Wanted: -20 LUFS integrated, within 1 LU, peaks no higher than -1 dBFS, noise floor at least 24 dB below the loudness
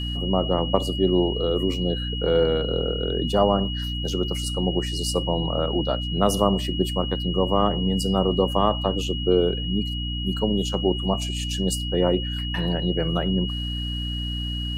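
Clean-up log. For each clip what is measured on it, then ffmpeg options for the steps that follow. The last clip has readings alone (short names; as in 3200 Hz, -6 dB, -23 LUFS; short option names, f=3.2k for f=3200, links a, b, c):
hum 60 Hz; harmonics up to 300 Hz; hum level -27 dBFS; steady tone 2900 Hz; tone level -31 dBFS; loudness -23.5 LUFS; peak -3.5 dBFS; loudness target -20.0 LUFS
-> -af "bandreject=f=60:t=h:w=6,bandreject=f=120:t=h:w=6,bandreject=f=180:t=h:w=6,bandreject=f=240:t=h:w=6,bandreject=f=300:t=h:w=6"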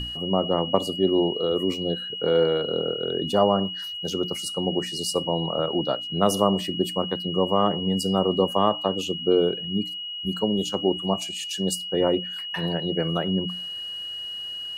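hum none; steady tone 2900 Hz; tone level -31 dBFS
-> -af "bandreject=f=2.9k:w=30"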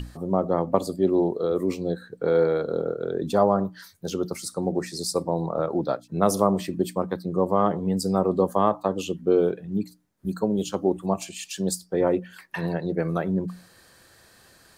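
steady tone none; loudness -25.5 LUFS; peak -3.5 dBFS; loudness target -20.0 LUFS
-> -af "volume=5.5dB,alimiter=limit=-1dB:level=0:latency=1"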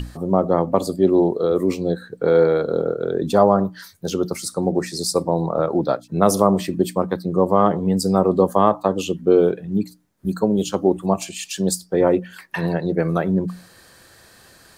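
loudness -20.0 LUFS; peak -1.0 dBFS; noise floor -50 dBFS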